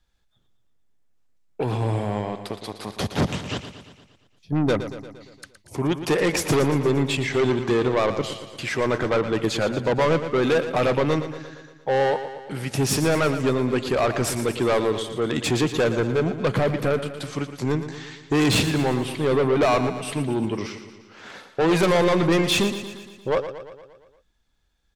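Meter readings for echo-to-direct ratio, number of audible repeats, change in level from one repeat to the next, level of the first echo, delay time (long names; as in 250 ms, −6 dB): −9.0 dB, 6, −4.5 dB, −11.0 dB, 116 ms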